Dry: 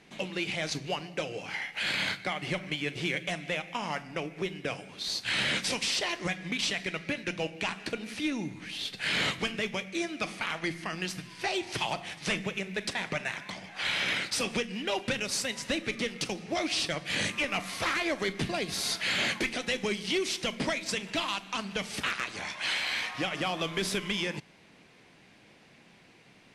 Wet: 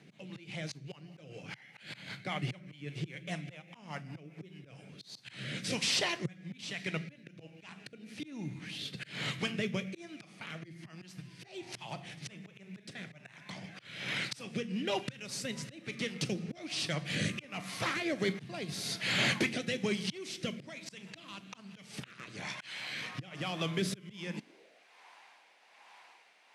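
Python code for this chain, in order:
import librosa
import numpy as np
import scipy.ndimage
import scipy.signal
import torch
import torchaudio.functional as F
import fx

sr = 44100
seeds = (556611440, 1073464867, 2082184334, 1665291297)

y = fx.rotary_switch(x, sr, hz=5.0, then_hz=1.2, switch_at_s=4.39)
y = fx.auto_swell(y, sr, attack_ms=502.0)
y = fx.filter_sweep_highpass(y, sr, from_hz=130.0, to_hz=900.0, start_s=24.23, end_s=24.85, q=3.5)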